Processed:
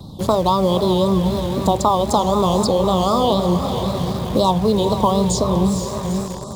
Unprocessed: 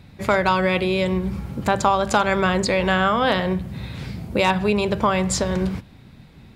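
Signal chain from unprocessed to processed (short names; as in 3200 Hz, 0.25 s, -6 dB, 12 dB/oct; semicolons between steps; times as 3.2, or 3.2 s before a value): elliptic band-stop 1100–3400 Hz, stop band 40 dB; diffused feedback echo 0.459 s, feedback 48%, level -8.5 dB; in parallel at -10.5 dB: bit-crush 5-bit; on the sum: vibrato 3.9 Hz 94 cents; three-band squash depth 40%; gain +1.5 dB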